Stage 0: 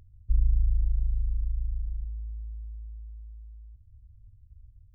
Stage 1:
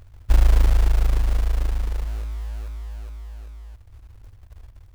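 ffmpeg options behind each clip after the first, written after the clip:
-af "acrusher=bits=4:mode=log:mix=0:aa=0.000001,volume=7.5dB"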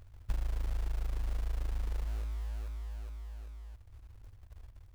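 -af "acompressor=threshold=-21dB:ratio=16,volume=-7.5dB"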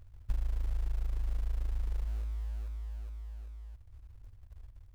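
-af "lowshelf=f=100:g=7.5,volume=-5dB"

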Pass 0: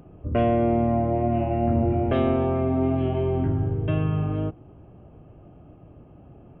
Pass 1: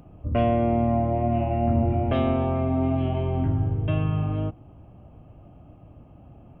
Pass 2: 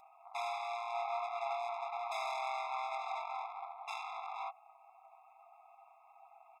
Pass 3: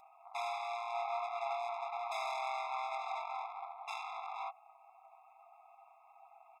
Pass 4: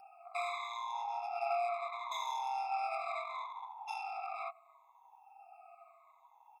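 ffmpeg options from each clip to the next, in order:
-af "equalizer=f=160:t=o:w=0.67:g=-3,equalizer=f=400:t=o:w=0.67:g=-9,equalizer=f=1.6k:t=o:w=0.67:g=-5,volume=2dB"
-af "aecho=1:1:6.3:0.5,aeval=exprs='(tanh(50.1*val(0)+0.65)-tanh(0.65))/50.1':c=same,afftfilt=real='re*eq(mod(floor(b*sr/1024/680),2),1)':imag='im*eq(mod(floor(b*sr/1024/680),2),1)':win_size=1024:overlap=0.75,volume=4.5dB"
-af anull
-af "afftfilt=real='re*pow(10,23/40*sin(2*PI*(1.1*log(max(b,1)*sr/1024/100)/log(2)-(-0.73)*(pts-256)/sr)))':imag='im*pow(10,23/40*sin(2*PI*(1.1*log(max(b,1)*sr/1024/100)/log(2)-(-0.73)*(pts-256)/sr)))':win_size=1024:overlap=0.75,volume=-4.5dB"

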